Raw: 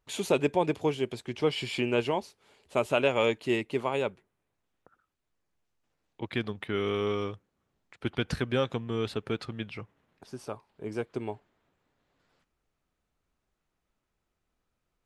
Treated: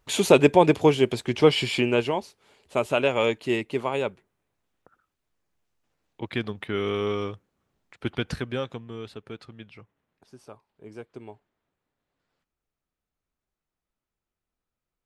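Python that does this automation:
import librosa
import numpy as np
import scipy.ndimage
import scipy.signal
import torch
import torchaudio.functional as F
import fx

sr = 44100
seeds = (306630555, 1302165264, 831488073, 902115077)

y = fx.gain(x, sr, db=fx.line((1.49, 9.5), (2.13, 2.5), (8.12, 2.5), (9.07, -7.5)))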